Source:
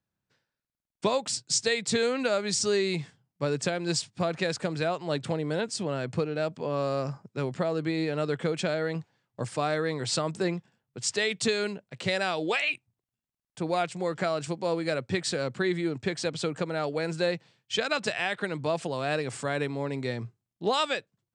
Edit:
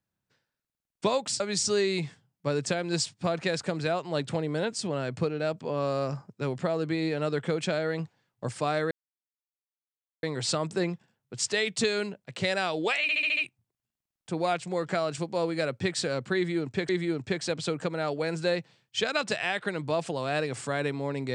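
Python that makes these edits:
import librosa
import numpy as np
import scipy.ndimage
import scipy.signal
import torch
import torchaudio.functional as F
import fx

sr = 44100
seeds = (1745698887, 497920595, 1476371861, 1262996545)

y = fx.edit(x, sr, fx.cut(start_s=1.4, length_s=0.96),
    fx.insert_silence(at_s=9.87, length_s=1.32),
    fx.stutter(start_s=12.66, slice_s=0.07, count=6),
    fx.repeat(start_s=15.65, length_s=0.53, count=2), tone=tone)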